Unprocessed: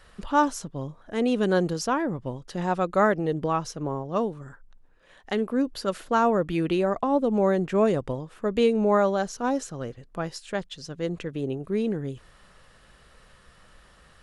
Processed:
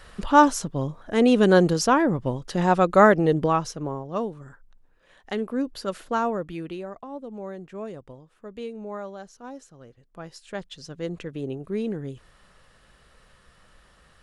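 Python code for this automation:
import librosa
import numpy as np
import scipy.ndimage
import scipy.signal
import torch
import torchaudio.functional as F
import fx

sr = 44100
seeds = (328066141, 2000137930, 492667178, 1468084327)

y = fx.gain(x, sr, db=fx.line((3.33, 6.0), (4.0, -2.0), (6.12, -2.0), (7.03, -14.0), (9.86, -14.0), (10.71, -2.0)))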